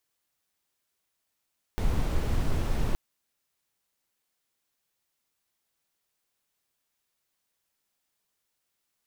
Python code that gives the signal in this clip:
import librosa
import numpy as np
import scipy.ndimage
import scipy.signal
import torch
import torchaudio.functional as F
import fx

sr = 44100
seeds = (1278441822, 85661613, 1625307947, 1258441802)

y = fx.noise_colour(sr, seeds[0], length_s=1.17, colour='brown', level_db=-25.0)